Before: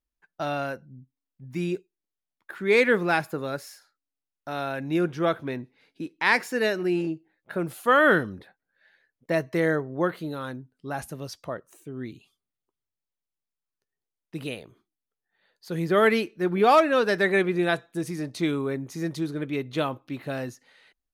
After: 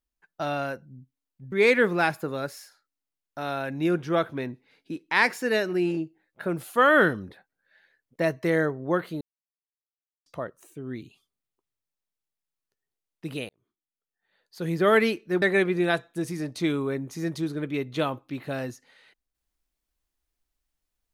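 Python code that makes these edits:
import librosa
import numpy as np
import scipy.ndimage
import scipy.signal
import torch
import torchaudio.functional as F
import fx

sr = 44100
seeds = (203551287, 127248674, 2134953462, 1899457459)

y = fx.edit(x, sr, fx.cut(start_s=1.52, length_s=1.1),
    fx.silence(start_s=10.31, length_s=1.05),
    fx.fade_in_span(start_s=14.59, length_s=1.18),
    fx.cut(start_s=16.52, length_s=0.69), tone=tone)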